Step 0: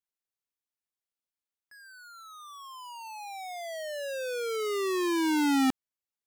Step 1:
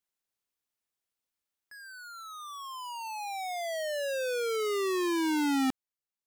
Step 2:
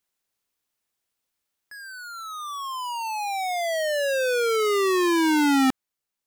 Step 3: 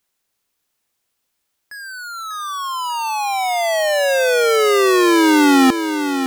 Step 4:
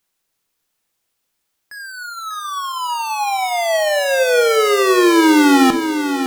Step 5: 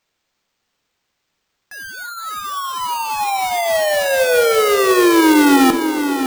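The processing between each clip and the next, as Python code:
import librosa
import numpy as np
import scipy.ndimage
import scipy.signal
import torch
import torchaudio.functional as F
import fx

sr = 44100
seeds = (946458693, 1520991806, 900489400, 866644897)

y1 = fx.rider(x, sr, range_db=4, speed_s=2.0)
y2 = fx.dynamic_eq(y1, sr, hz=1400.0, q=1.1, threshold_db=-44.0, ratio=4.0, max_db=3)
y2 = y2 * 10.0 ** (7.5 / 20.0)
y3 = fx.echo_feedback(y2, sr, ms=593, feedback_pct=44, wet_db=-8.5)
y3 = y3 * 10.0 ** (7.5 / 20.0)
y4 = fx.room_shoebox(y3, sr, seeds[0], volume_m3=420.0, walls='furnished', distance_m=0.63)
y5 = fx.echo_bbd(y4, sr, ms=277, stages=2048, feedback_pct=78, wet_db=-17.5)
y5 = np.repeat(y5[::4], 4)[:len(y5)]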